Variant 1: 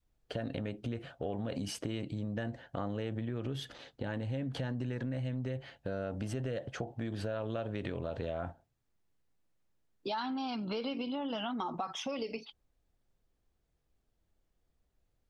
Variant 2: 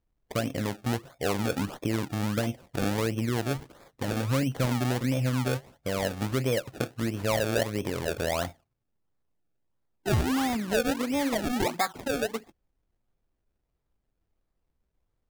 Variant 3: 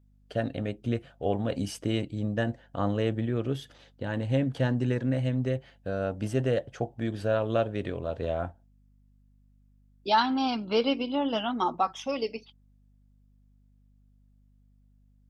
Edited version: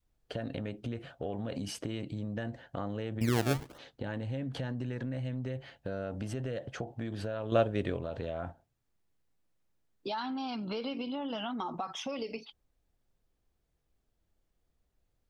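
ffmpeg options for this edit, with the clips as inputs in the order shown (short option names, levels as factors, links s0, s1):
-filter_complex "[0:a]asplit=3[s0][s1][s2];[s0]atrim=end=3.212[s3];[1:a]atrim=start=3.208:end=3.782[s4];[s1]atrim=start=3.778:end=7.522[s5];[2:a]atrim=start=7.518:end=7.972[s6];[s2]atrim=start=7.968[s7];[s3][s4]acrossfade=d=0.004:c1=hsin:c2=hsin[s8];[s8][s5]acrossfade=d=0.004:c1=hsin:c2=hsin[s9];[s9][s6]acrossfade=d=0.004:c1=hsin:c2=hsin[s10];[s10][s7]acrossfade=d=0.004:c1=hsin:c2=hsin"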